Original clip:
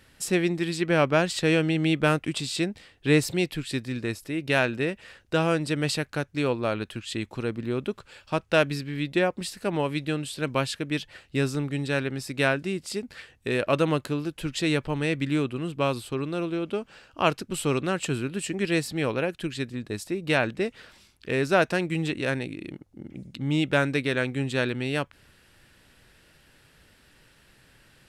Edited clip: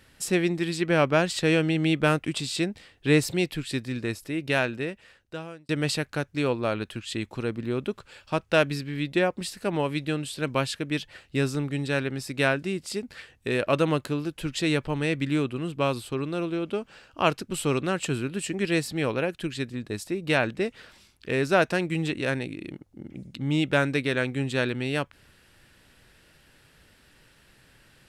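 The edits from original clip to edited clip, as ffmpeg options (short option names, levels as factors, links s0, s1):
-filter_complex "[0:a]asplit=2[s0][s1];[s0]atrim=end=5.69,asetpts=PTS-STARTPTS,afade=t=out:st=4.36:d=1.33[s2];[s1]atrim=start=5.69,asetpts=PTS-STARTPTS,afade=t=in:d=0.004:c=hsin[s3];[s2][s3]concat=n=2:v=0:a=1"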